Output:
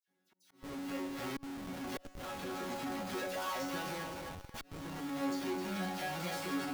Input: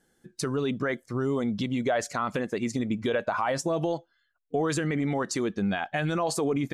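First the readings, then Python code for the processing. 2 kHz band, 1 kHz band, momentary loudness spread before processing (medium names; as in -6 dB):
-9.0 dB, -9.0 dB, 4 LU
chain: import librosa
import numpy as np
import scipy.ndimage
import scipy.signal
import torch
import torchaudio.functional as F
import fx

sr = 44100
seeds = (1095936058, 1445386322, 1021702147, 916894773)

p1 = fx.halfwave_hold(x, sr)
p2 = scipy.signal.sosfilt(scipy.signal.butter(2, 110.0, 'highpass', fs=sr, output='sos'), p1)
p3 = fx.peak_eq(p2, sr, hz=8000.0, db=-4.0, octaves=0.7)
p4 = fx.resonator_bank(p3, sr, root=54, chord='fifth', decay_s=0.48)
p5 = fx.dispersion(p4, sr, late='lows', ms=78.0, hz=2300.0)
p6 = p5 + fx.echo_split(p5, sr, split_hz=540.0, low_ms=100, high_ms=261, feedback_pct=52, wet_db=-8.0, dry=0)
p7 = fx.auto_swell(p6, sr, attack_ms=729.0)
p8 = fx.schmitt(p7, sr, flips_db=-51.0)
y = p7 + (p8 * 10.0 ** (-1.5 / 20.0))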